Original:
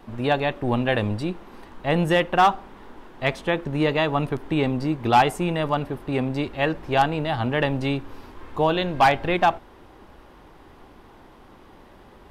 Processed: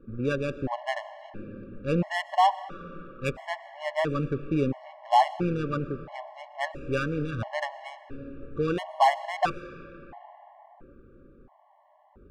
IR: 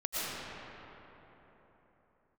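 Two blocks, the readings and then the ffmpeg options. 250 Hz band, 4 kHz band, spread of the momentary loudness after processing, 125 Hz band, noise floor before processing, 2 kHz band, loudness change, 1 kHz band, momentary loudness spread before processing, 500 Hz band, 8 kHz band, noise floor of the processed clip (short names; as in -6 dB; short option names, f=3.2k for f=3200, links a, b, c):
-7.0 dB, -8.5 dB, 19 LU, -6.5 dB, -49 dBFS, -7.5 dB, -5.5 dB, -4.5 dB, 8 LU, -6.5 dB, n/a, -60 dBFS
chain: -filter_complex "[0:a]adynamicsmooth=sensitivity=1:basefreq=1k,asplit=2[a][b];[1:a]atrim=start_sample=2205[c];[b][c]afir=irnorm=-1:irlink=0,volume=-21dB[d];[a][d]amix=inputs=2:normalize=0,afftfilt=real='re*gt(sin(2*PI*0.74*pts/sr)*(1-2*mod(floor(b*sr/1024/560),2)),0)':imag='im*gt(sin(2*PI*0.74*pts/sr)*(1-2*mod(floor(b*sr/1024/560),2)),0)':win_size=1024:overlap=0.75,volume=-3dB"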